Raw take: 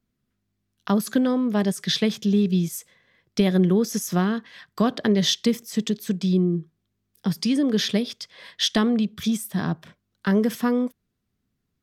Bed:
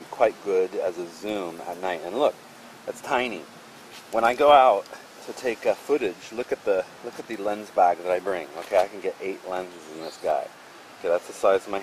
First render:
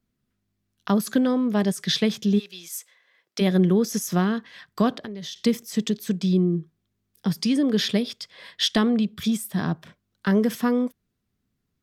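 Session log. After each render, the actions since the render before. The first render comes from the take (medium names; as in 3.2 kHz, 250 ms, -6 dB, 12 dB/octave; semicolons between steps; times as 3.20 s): 2.38–3.40 s: high-pass 1.3 kHz -> 460 Hz; 4.95–5.36 s: compression, threshold -33 dBFS; 7.57–9.59 s: band-stop 6.1 kHz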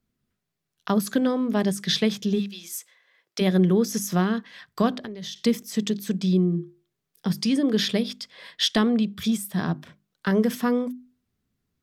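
hum notches 50/100/150/200/250/300/350 Hz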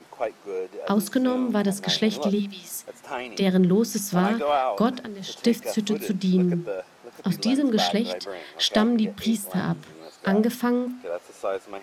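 add bed -8 dB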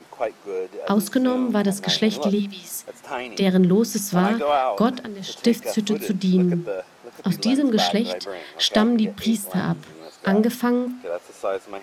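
trim +2.5 dB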